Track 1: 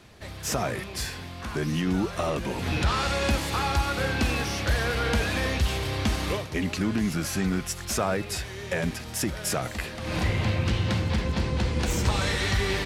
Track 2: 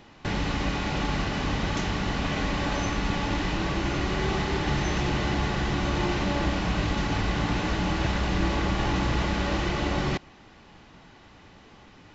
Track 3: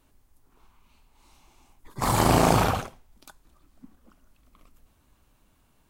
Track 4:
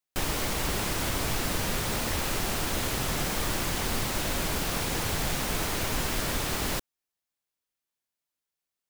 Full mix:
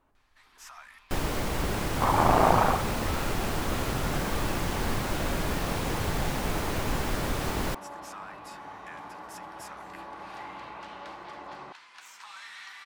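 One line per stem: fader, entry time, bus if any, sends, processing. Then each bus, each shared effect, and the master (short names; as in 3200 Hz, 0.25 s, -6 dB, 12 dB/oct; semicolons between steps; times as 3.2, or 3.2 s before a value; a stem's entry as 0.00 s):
-10.0 dB, 0.15 s, no send, steep high-pass 970 Hz 36 dB/oct
-6.0 dB, 1.55 s, no send, band-pass 980 Hz, Q 1.9
-8.5 dB, 0.00 s, no send, bell 1100 Hz +12 dB 2.7 oct
+2.0 dB, 0.95 s, no send, dry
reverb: off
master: high shelf 2100 Hz -9.5 dB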